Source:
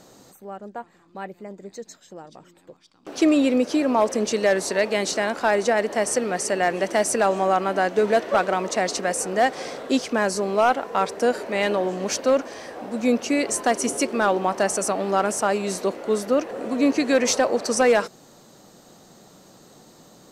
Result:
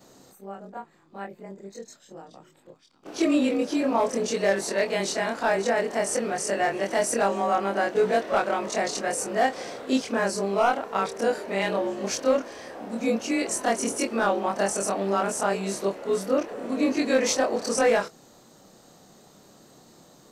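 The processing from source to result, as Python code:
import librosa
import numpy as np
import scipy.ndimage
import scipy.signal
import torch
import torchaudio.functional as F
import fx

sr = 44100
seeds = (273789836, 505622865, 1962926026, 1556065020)

y = fx.frame_reverse(x, sr, frame_ms=61.0)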